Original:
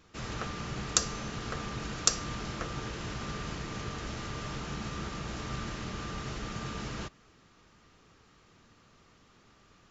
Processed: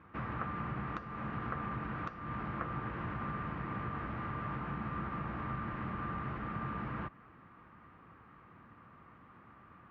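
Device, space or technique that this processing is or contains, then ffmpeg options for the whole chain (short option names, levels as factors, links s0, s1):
bass amplifier: -af "acompressor=threshold=0.01:ratio=3,highpass=72,equalizer=f=420:t=q:w=4:g=-7,equalizer=f=610:t=q:w=4:g=-3,equalizer=f=1100:t=q:w=4:g=5,lowpass=f=2000:w=0.5412,lowpass=f=2000:w=1.3066,volume=1.68"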